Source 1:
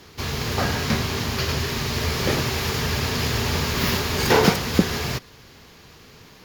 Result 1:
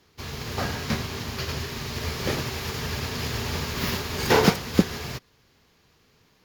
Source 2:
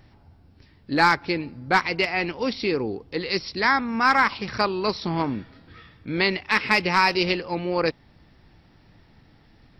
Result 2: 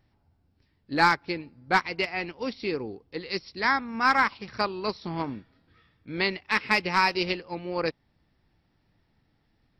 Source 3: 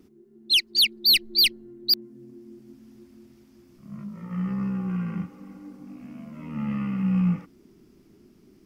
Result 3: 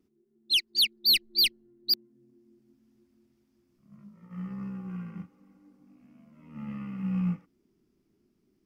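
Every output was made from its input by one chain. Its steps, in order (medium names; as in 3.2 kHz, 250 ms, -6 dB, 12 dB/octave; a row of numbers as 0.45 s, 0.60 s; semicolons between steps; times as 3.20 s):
upward expansion 1.5:1, over -40 dBFS; normalise loudness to -27 LUFS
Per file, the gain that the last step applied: -0.5 dB, -2.0 dB, -3.5 dB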